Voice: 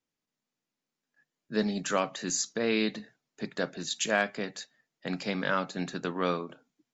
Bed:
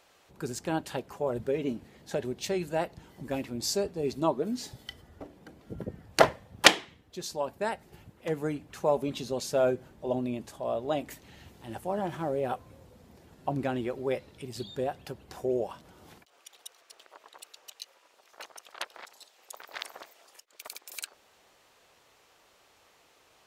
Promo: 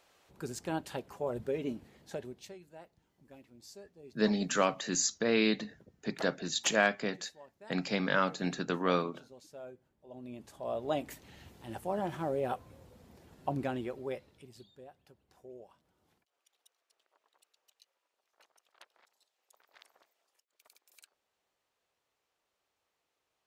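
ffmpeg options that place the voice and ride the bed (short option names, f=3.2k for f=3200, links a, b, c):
-filter_complex "[0:a]adelay=2650,volume=0dB[a];[1:a]volume=15dB,afade=t=out:st=1.88:d=0.7:silence=0.133352,afade=t=in:st=10.1:d=0.82:silence=0.105925,afade=t=out:st=13.45:d=1.26:silence=0.11885[b];[a][b]amix=inputs=2:normalize=0"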